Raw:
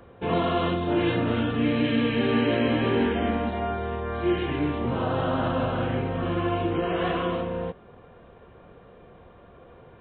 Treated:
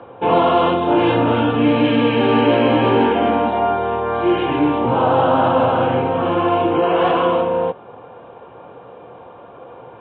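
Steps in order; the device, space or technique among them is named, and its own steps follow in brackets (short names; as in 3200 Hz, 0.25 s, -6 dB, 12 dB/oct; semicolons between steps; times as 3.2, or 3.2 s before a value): overdrive pedal into a guitar cabinet (overdrive pedal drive 12 dB, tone 3700 Hz, clips at -11.5 dBFS; speaker cabinet 88–3600 Hz, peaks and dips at 120 Hz +8 dB, 290 Hz +6 dB, 510 Hz +5 dB, 860 Hz +10 dB, 1900 Hz -9 dB); gain +4.5 dB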